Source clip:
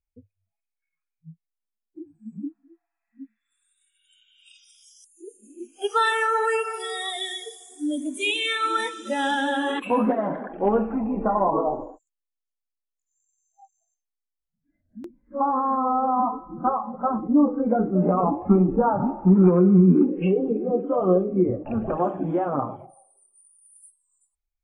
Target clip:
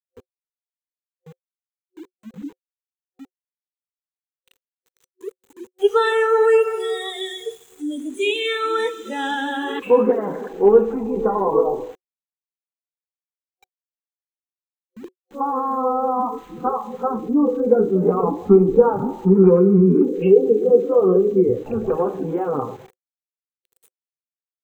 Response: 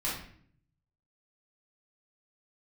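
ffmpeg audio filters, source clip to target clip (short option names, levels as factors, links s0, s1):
-filter_complex "[0:a]asplit=2[s0][s1];[1:a]atrim=start_sample=2205,lowpass=4600[s2];[s1][s2]afir=irnorm=-1:irlink=0,volume=0.0398[s3];[s0][s3]amix=inputs=2:normalize=0,aeval=exprs='val(0)*gte(abs(val(0)),0.00631)':c=same,superequalizer=7b=3.55:8b=0.501:14b=0.501:16b=0.447"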